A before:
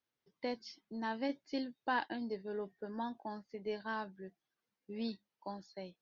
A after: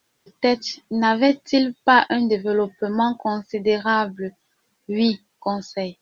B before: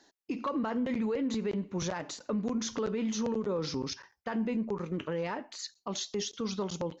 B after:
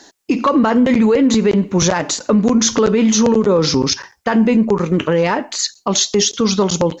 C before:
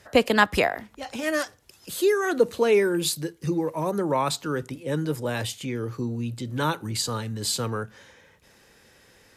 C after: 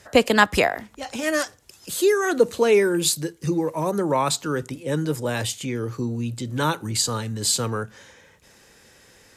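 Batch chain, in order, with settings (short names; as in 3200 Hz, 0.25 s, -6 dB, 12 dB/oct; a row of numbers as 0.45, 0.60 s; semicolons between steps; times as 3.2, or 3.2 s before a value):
bell 7300 Hz +5 dB 0.79 oct; normalise peaks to -2 dBFS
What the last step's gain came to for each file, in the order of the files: +20.5, +18.5, +2.5 dB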